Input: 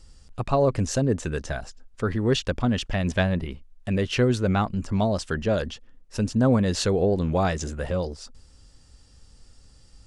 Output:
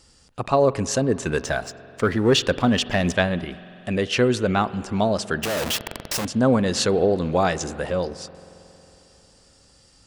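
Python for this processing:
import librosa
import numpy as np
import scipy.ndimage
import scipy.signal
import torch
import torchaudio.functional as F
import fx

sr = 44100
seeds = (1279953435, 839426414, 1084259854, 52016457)

y = fx.clip_1bit(x, sr, at=(5.43, 6.25))
y = fx.highpass(y, sr, hz=250.0, slope=6)
y = fx.leveller(y, sr, passes=1, at=(1.26, 3.13))
y = fx.rev_spring(y, sr, rt60_s=3.4, pass_ms=(45,), chirp_ms=30, drr_db=16.0)
y = F.gain(torch.from_numpy(y), 4.5).numpy()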